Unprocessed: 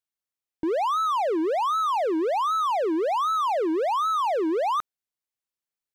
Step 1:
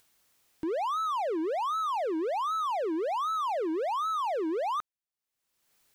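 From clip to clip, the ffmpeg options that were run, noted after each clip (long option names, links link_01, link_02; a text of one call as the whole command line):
ffmpeg -i in.wav -af "acompressor=mode=upward:threshold=-39dB:ratio=2.5,volume=-6dB" out.wav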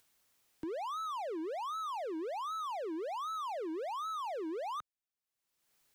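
ffmpeg -i in.wav -filter_complex "[0:a]acrossover=split=120|3000[link_01][link_02][link_03];[link_02]acompressor=threshold=-36dB:ratio=2[link_04];[link_01][link_04][link_03]amix=inputs=3:normalize=0,volume=-4.5dB" out.wav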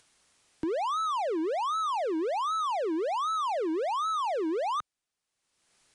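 ffmpeg -i in.wav -af "aresample=22050,aresample=44100,volume=9dB" out.wav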